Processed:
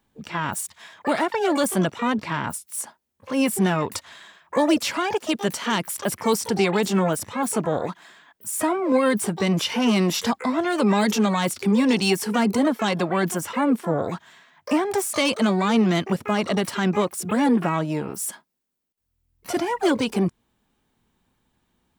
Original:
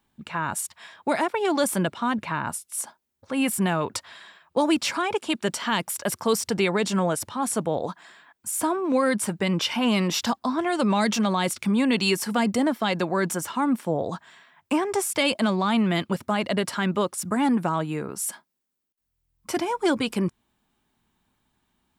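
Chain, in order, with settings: bass shelf 430 Hz +3.5 dB; harmony voices +12 st -10 dB

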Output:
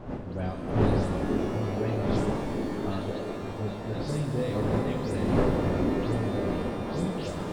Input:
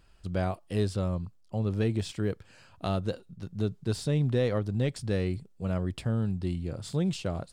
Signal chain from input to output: delay that grows with frequency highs late, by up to 147 ms; wind noise 400 Hz -28 dBFS; repeats whose band climbs or falls 500 ms, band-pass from 300 Hz, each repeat 0.7 oct, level -1.5 dB; pitch-shifted reverb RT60 3.2 s, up +12 st, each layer -8 dB, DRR 3 dB; trim -5.5 dB

